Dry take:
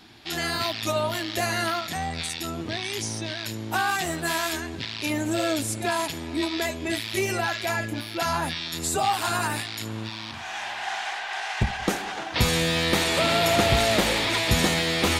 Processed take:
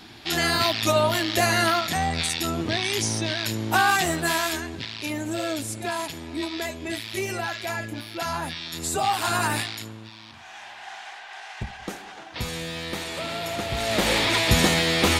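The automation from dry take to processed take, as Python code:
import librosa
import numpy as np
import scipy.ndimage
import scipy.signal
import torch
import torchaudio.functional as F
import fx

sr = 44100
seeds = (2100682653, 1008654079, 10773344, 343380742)

y = fx.gain(x, sr, db=fx.line((3.95, 5.0), (5.13, -3.0), (8.58, -3.0), (9.63, 3.5), (9.99, -9.0), (13.69, -9.0), (14.13, 2.5)))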